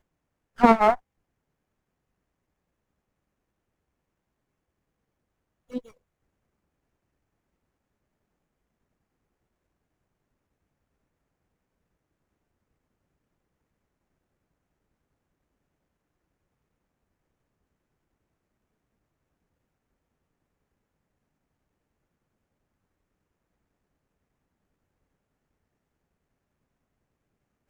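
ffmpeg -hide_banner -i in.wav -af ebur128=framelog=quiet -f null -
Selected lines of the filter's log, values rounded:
Integrated loudness:
  I:         -20.4 LUFS
  Threshold: -33.4 LUFS
Loudness range:
  LRA:        20.3 LU
  Threshold: -53.7 LUFS
  LRA low:   -47.1 LUFS
  LRA high:  -26.8 LUFS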